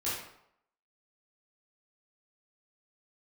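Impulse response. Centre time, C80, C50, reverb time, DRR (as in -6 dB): 60 ms, 4.5 dB, 0.5 dB, 0.75 s, -10.0 dB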